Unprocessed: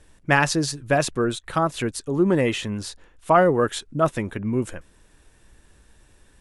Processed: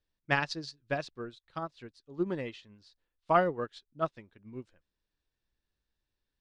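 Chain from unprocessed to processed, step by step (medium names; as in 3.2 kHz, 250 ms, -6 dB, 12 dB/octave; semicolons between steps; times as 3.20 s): resonant low-pass 4.5 kHz, resonance Q 2.9; upward expansion 2.5:1, over -29 dBFS; trim -7 dB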